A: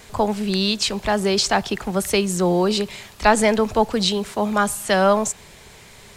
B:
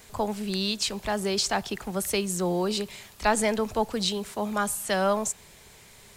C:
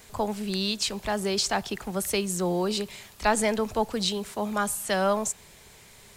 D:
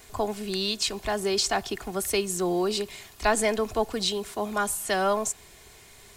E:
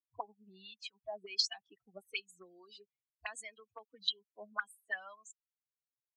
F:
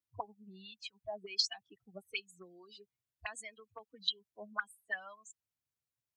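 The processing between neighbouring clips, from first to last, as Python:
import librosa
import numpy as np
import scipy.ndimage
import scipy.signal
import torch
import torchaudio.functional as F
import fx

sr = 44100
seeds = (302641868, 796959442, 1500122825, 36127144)

y1 = fx.high_shelf(x, sr, hz=8500.0, db=9.0)
y1 = F.gain(torch.from_numpy(y1), -8.0).numpy()
y2 = y1
y3 = y2 + 0.42 * np.pad(y2, (int(2.8 * sr / 1000.0), 0))[:len(y2)]
y4 = fx.bin_expand(y3, sr, power=3.0)
y4 = fx.auto_wah(y4, sr, base_hz=340.0, top_hz=4300.0, q=5.2, full_db=-26.5, direction='up')
y4 = F.gain(torch.from_numpy(y4), 4.5).numpy()
y5 = fx.peak_eq(y4, sr, hz=97.0, db=15.0, octaves=1.8)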